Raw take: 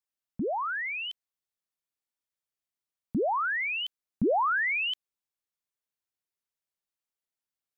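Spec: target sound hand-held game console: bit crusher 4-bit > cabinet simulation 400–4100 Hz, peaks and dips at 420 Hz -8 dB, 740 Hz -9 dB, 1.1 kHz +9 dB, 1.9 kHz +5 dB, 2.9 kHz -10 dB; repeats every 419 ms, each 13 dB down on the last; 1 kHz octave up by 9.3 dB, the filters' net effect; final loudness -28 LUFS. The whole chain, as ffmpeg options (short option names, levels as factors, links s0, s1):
-af "equalizer=f=1000:t=o:g=7,aecho=1:1:419|838|1257:0.224|0.0493|0.0108,acrusher=bits=3:mix=0:aa=0.000001,highpass=400,equalizer=f=420:t=q:w=4:g=-8,equalizer=f=740:t=q:w=4:g=-9,equalizer=f=1100:t=q:w=4:g=9,equalizer=f=1900:t=q:w=4:g=5,equalizer=f=2900:t=q:w=4:g=-10,lowpass=f=4100:w=0.5412,lowpass=f=4100:w=1.3066,volume=0.473"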